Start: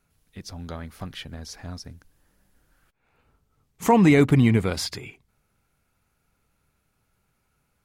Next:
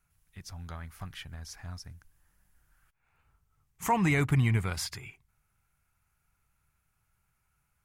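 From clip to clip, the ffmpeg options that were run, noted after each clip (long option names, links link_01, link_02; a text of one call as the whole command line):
ffmpeg -i in.wav -af "equalizer=frequency=250:width_type=o:width=1:gain=-11,equalizer=frequency=500:width_type=o:width=1:gain=-11,equalizer=frequency=4000:width_type=o:width=1:gain=-7,volume=-2dB" out.wav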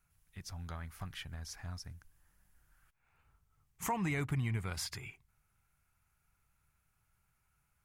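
ffmpeg -i in.wav -af "acompressor=threshold=-36dB:ratio=2,volume=-1.5dB" out.wav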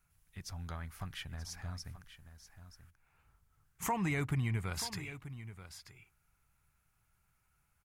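ffmpeg -i in.wav -af "aecho=1:1:933:0.224,volume=1dB" out.wav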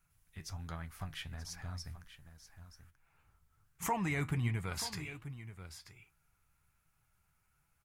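ffmpeg -i in.wav -af "flanger=delay=5.9:depth=7.2:regen=64:speed=1.3:shape=sinusoidal,volume=4dB" out.wav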